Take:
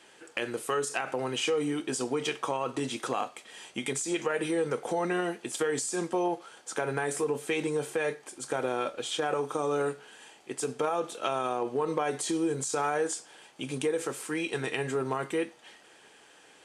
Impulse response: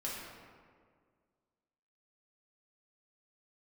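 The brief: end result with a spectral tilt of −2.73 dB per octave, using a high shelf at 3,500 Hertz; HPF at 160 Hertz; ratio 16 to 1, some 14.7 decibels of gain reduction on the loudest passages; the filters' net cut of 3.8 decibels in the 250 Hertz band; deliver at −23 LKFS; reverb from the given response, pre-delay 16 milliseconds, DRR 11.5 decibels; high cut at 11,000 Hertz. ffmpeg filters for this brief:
-filter_complex "[0:a]highpass=160,lowpass=11000,equalizer=frequency=250:width_type=o:gain=-5,highshelf=frequency=3500:gain=-3,acompressor=threshold=-40dB:ratio=16,asplit=2[link_01][link_02];[1:a]atrim=start_sample=2205,adelay=16[link_03];[link_02][link_03]afir=irnorm=-1:irlink=0,volume=-13.5dB[link_04];[link_01][link_04]amix=inputs=2:normalize=0,volume=21.5dB"

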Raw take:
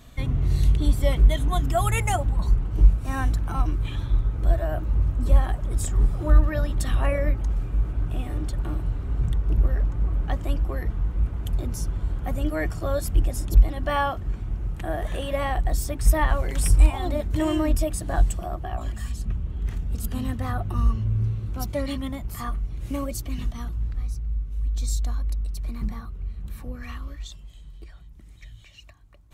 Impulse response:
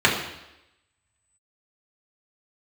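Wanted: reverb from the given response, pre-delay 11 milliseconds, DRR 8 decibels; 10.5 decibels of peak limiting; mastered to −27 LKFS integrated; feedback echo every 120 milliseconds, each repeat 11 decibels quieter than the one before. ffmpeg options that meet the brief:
-filter_complex "[0:a]alimiter=limit=-15dB:level=0:latency=1,aecho=1:1:120|240|360:0.282|0.0789|0.0221,asplit=2[link_01][link_02];[1:a]atrim=start_sample=2205,adelay=11[link_03];[link_02][link_03]afir=irnorm=-1:irlink=0,volume=-29dB[link_04];[link_01][link_04]amix=inputs=2:normalize=0"

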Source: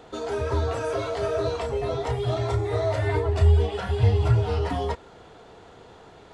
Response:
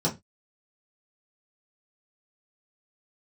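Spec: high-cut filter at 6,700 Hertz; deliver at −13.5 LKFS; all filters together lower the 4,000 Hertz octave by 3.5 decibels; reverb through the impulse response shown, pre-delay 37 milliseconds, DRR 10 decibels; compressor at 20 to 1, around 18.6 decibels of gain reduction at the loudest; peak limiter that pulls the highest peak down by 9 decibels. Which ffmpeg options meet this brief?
-filter_complex "[0:a]lowpass=6700,equalizer=frequency=4000:width_type=o:gain=-4,acompressor=threshold=-32dB:ratio=20,alimiter=level_in=9dB:limit=-24dB:level=0:latency=1,volume=-9dB,asplit=2[link_01][link_02];[1:a]atrim=start_sample=2205,adelay=37[link_03];[link_02][link_03]afir=irnorm=-1:irlink=0,volume=-20dB[link_04];[link_01][link_04]amix=inputs=2:normalize=0,volume=26.5dB"

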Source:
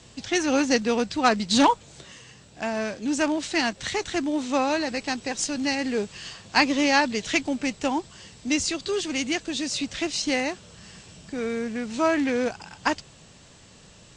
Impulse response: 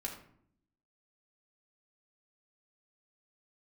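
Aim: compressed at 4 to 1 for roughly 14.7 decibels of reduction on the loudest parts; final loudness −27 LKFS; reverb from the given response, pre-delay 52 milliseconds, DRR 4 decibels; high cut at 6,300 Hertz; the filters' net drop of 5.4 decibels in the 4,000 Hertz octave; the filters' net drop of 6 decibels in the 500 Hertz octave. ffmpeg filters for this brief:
-filter_complex "[0:a]lowpass=6300,equalizer=frequency=500:width_type=o:gain=-7.5,equalizer=frequency=4000:width_type=o:gain=-6,acompressor=threshold=-35dB:ratio=4,asplit=2[link_01][link_02];[1:a]atrim=start_sample=2205,adelay=52[link_03];[link_02][link_03]afir=irnorm=-1:irlink=0,volume=-4dB[link_04];[link_01][link_04]amix=inputs=2:normalize=0,volume=9dB"

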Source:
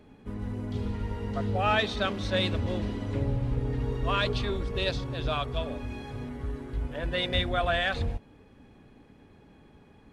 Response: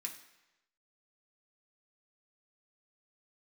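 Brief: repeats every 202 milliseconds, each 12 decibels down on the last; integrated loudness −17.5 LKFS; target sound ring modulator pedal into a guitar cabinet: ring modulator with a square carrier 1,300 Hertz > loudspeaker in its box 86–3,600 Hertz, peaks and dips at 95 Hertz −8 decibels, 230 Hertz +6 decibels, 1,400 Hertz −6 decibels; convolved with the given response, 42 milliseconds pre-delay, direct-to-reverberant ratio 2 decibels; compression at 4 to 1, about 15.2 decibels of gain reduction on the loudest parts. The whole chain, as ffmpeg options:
-filter_complex "[0:a]acompressor=threshold=-41dB:ratio=4,aecho=1:1:202|404|606:0.251|0.0628|0.0157,asplit=2[link_01][link_02];[1:a]atrim=start_sample=2205,adelay=42[link_03];[link_02][link_03]afir=irnorm=-1:irlink=0,volume=0dB[link_04];[link_01][link_04]amix=inputs=2:normalize=0,aeval=exprs='val(0)*sgn(sin(2*PI*1300*n/s))':channel_layout=same,highpass=86,equalizer=frequency=95:width_type=q:width=4:gain=-8,equalizer=frequency=230:width_type=q:width=4:gain=6,equalizer=frequency=1400:width_type=q:width=4:gain=-6,lowpass=frequency=3600:width=0.5412,lowpass=frequency=3600:width=1.3066,volume=24.5dB"

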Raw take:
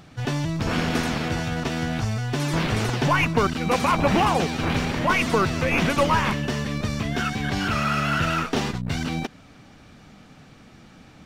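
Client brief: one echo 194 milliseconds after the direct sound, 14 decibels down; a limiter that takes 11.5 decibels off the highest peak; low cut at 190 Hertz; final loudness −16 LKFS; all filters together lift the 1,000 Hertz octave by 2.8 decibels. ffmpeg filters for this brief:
ffmpeg -i in.wav -af "highpass=190,equalizer=frequency=1000:width_type=o:gain=3.5,alimiter=limit=-18dB:level=0:latency=1,aecho=1:1:194:0.2,volume=11.5dB" out.wav

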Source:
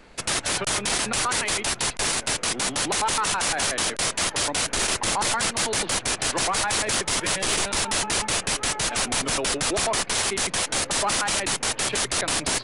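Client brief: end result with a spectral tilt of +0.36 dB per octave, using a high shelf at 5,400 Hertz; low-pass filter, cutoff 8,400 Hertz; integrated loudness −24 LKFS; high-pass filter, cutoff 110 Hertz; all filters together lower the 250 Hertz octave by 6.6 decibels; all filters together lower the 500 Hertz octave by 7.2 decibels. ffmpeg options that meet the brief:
ffmpeg -i in.wav -af "highpass=110,lowpass=8400,equalizer=frequency=250:width_type=o:gain=-6,equalizer=frequency=500:width_type=o:gain=-8,highshelf=frequency=5400:gain=4,volume=-1dB" out.wav

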